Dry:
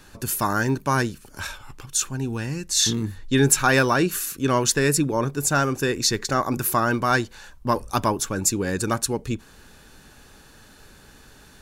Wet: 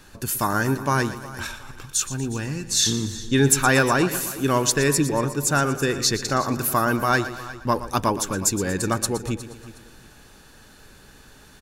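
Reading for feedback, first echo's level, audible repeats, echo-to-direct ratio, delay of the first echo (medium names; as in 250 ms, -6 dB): no regular repeats, -13.5 dB, 5, -11.0 dB, 118 ms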